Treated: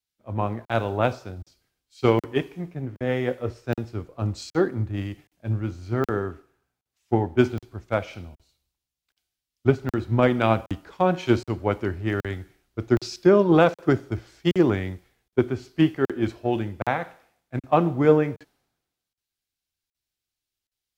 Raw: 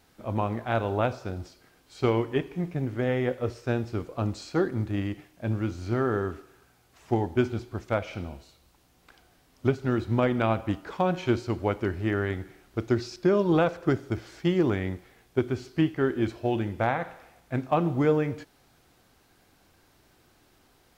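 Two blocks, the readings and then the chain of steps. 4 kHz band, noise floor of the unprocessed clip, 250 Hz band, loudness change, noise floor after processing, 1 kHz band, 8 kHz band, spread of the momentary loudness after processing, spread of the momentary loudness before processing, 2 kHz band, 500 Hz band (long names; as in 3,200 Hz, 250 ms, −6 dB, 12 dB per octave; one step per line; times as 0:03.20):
+4.0 dB, −63 dBFS, +3.0 dB, +3.5 dB, below −85 dBFS, +3.5 dB, can't be measured, 16 LU, 11 LU, +3.0 dB, +4.0 dB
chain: regular buffer underruns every 0.77 s, samples 2,048, zero, from 0:00.65
multiband upward and downward expander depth 100%
level +2 dB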